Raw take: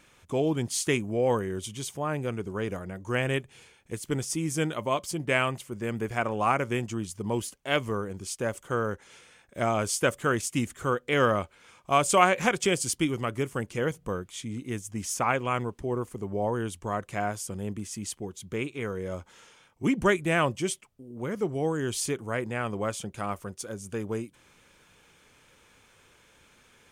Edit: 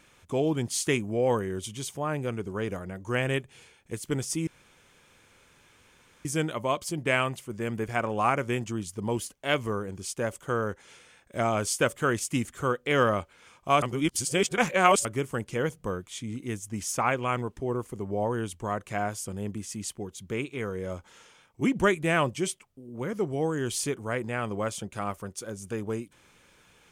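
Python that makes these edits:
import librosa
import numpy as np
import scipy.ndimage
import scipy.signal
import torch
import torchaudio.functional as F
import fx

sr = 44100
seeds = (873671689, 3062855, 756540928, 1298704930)

y = fx.edit(x, sr, fx.insert_room_tone(at_s=4.47, length_s=1.78),
    fx.reverse_span(start_s=12.04, length_s=1.23), tone=tone)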